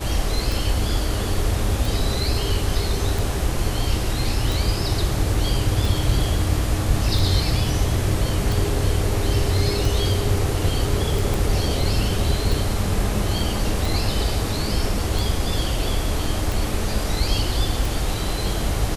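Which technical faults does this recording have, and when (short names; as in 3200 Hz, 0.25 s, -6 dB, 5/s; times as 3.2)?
tick 45 rpm
11.34 pop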